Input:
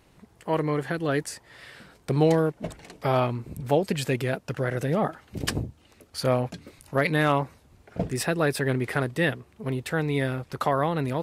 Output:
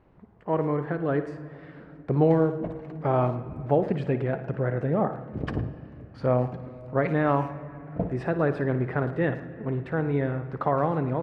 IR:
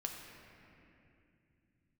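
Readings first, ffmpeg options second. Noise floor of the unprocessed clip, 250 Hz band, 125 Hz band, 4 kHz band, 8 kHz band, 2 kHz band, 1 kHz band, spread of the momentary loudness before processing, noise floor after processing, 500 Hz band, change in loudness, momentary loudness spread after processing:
-59 dBFS, +0.5 dB, +0.5 dB, under -15 dB, under -30 dB, -6.0 dB, -0.5 dB, 15 LU, -48 dBFS, +0.5 dB, -0.5 dB, 13 LU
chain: -filter_complex "[0:a]lowpass=1.3k,asplit=2[a][b];[b]adelay=110,highpass=300,lowpass=3.4k,asoftclip=type=hard:threshold=-17.5dB,volume=-15dB[c];[a][c]amix=inputs=2:normalize=0,asplit=2[d][e];[1:a]atrim=start_sample=2205,adelay=56[f];[e][f]afir=irnorm=-1:irlink=0,volume=-10.5dB[g];[d][g]amix=inputs=2:normalize=0"

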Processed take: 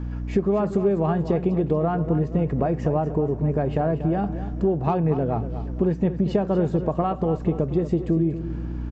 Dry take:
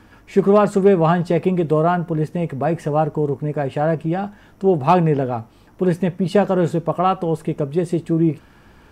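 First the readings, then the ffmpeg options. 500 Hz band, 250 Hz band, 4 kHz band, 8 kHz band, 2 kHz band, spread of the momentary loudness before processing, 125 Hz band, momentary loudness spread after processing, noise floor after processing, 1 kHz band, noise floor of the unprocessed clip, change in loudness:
-5.5 dB, -3.0 dB, under -10 dB, n/a, -10.0 dB, 8 LU, -2.0 dB, 4 LU, -32 dBFS, -8.0 dB, -50 dBFS, -4.5 dB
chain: -af "aeval=exprs='val(0)+0.0224*(sin(2*PI*60*n/s)+sin(2*PI*2*60*n/s)/2+sin(2*PI*3*60*n/s)/3+sin(2*PI*4*60*n/s)/4+sin(2*PI*5*60*n/s)/5)':c=same,acompressor=threshold=-23dB:ratio=6,tiltshelf=f=1.1k:g=5,aresample=16000,aresample=44100,aecho=1:1:237|474|711|948:0.251|0.108|0.0464|0.02"

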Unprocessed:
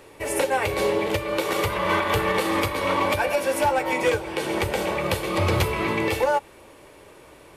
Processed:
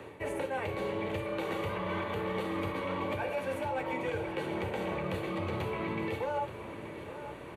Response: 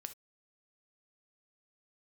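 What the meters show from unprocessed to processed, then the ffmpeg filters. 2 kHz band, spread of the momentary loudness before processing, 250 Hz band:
-12.5 dB, 3 LU, -8.0 dB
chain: -filter_complex "[0:a]acrossover=split=160|940|2200[a][b][c][d];[a]acompressor=threshold=-37dB:ratio=4[e];[b]acompressor=threshold=-24dB:ratio=4[f];[c]acompressor=threshold=-35dB:ratio=4[g];[d]acompressor=threshold=-31dB:ratio=4[h];[e][f][g][h]amix=inputs=4:normalize=0,bass=f=250:g=6,treble=f=4k:g=-13,bandreject=f=5.2k:w=5.1[i];[1:a]atrim=start_sample=2205[j];[i][j]afir=irnorm=-1:irlink=0,areverse,acompressor=threshold=-39dB:ratio=6,areverse,highpass=86,asplit=2[k][l];[l]aecho=0:1:878:0.237[m];[k][m]amix=inputs=2:normalize=0,volume=7dB"

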